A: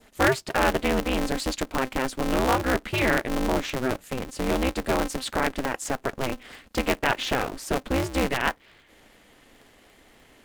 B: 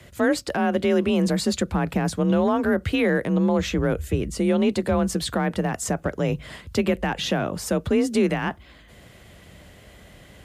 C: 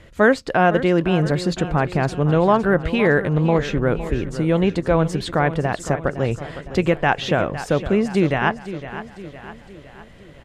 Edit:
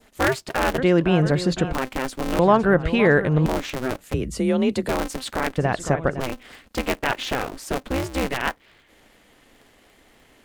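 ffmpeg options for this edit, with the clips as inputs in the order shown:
-filter_complex "[2:a]asplit=3[a][b][c];[0:a]asplit=5[d][e][f][g][h];[d]atrim=end=0.782[i];[a]atrim=start=0.778:end=1.732[j];[e]atrim=start=1.728:end=2.392[k];[b]atrim=start=2.388:end=3.462[l];[f]atrim=start=3.458:end=4.142[m];[1:a]atrim=start=4.138:end=4.892[n];[g]atrim=start=4.888:end=5.582[o];[c]atrim=start=5.578:end=6.202[p];[h]atrim=start=6.198[q];[i][j]acrossfade=d=0.004:c1=hsin:c2=hsin[r];[r][k]acrossfade=d=0.004:c1=hsin:c2=hsin[s];[s][l]acrossfade=d=0.004:c1=hsin:c2=hsin[t];[t][m]acrossfade=d=0.004:c1=hsin:c2=hsin[u];[u][n]acrossfade=d=0.004:c1=hsin:c2=hsin[v];[v][o]acrossfade=d=0.004:c1=hsin:c2=hsin[w];[w][p]acrossfade=d=0.004:c1=hsin:c2=hsin[x];[x][q]acrossfade=d=0.004:c1=hsin:c2=hsin"

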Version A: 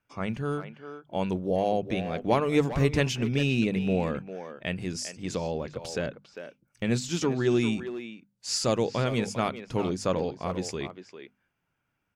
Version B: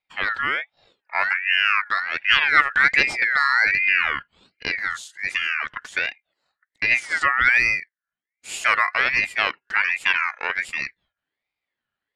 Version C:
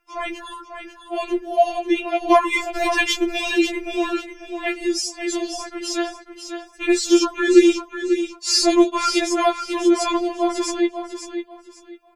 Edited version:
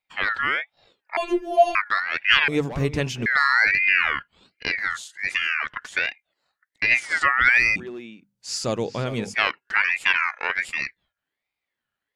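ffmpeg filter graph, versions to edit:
-filter_complex "[0:a]asplit=2[a][b];[1:a]asplit=4[c][d][e][f];[c]atrim=end=1.172[g];[2:a]atrim=start=1.168:end=1.752[h];[d]atrim=start=1.748:end=2.482[i];[a]atrim=start=2.478:end=3.262[j];[e]atrim=start=3.258:end=7.762[k];[b]atrim=start=7.758:end=9.342[l];[f]atrim=start=9.338[m];[g][h]acrossfade=d=0.004:c1=hsin:c2=hsin[n];[n][i]acrossfade=d=0.004:c1=hsin:c2=hsin[o];[o][j]acrossfade=d=0.004:c1=hsin:c2=hsin[p];[p][k]acrossfade=d=0.004:c1=hsin:c2=hsin[q];[q][l]acrossfade=d=0.004:c1=hsin:c2=hsin[r];[r][m]acrossfade=d=0.004:c1=hsin:c2=hsin"

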